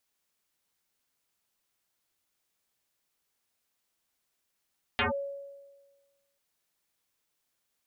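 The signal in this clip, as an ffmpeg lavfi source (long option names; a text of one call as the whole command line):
ffmpeg -f lavfi -i "aevalsrc='0.075*pow(10,-3*t/1.39)*sin(2*PI*559*t+9.6*clip(1-t/0.13,0,1)*sin(2*PI*0.58*559*t))':duration=1.39:sample_rate=44100" out.wav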